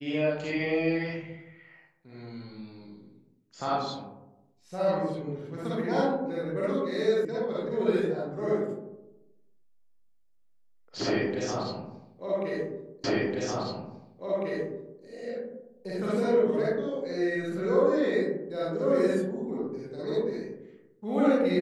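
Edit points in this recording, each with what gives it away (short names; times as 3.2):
7.25 sound cut off
13.04 repeat of the last 2 s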